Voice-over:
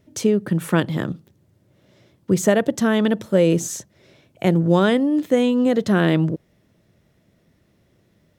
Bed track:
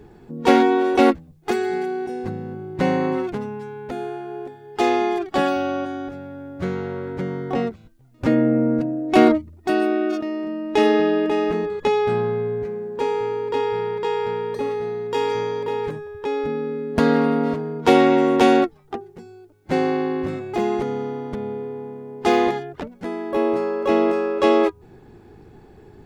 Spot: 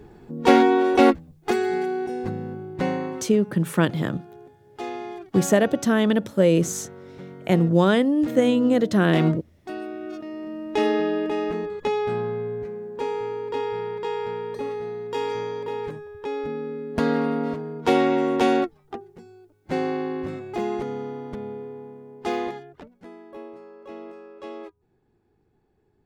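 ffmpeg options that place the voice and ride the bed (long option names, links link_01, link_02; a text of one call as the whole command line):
ffmpeg -i stem1.wav -i stem2.wav -filter_complex "[0:a]adelay=3050,volume=-1.5dB[link_01];[1:a]volume=8dB,afade=type=out:start_time=2.43:duration=0.85:silence=0.223872,afade=type=in:start_time=10:duration=0.62:silence=0.375837,afade=type=out:start_time=21.36:duration=2.16:silence=0.149624[link_02];[link_01][link_02]amix=inputs=2:normalize=0" out.wav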